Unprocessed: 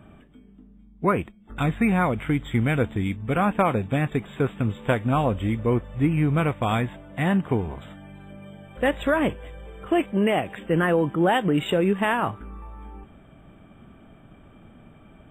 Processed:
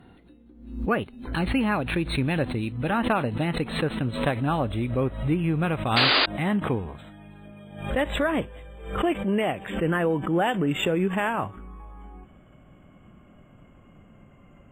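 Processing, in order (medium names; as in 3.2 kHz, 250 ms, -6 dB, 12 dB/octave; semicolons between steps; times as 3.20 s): gliding tape speed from 119% -> 89%; painted sound noise, 5.96–6.26 s, 250–4900 Hz -17 dBFS; swell ahead of each attack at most 85 dB/s; trim -3 dB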